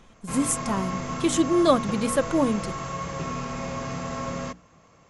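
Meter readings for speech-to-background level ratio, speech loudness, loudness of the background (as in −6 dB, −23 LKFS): 7.5 dB, −24.5 LKFS, −32.0 LKFS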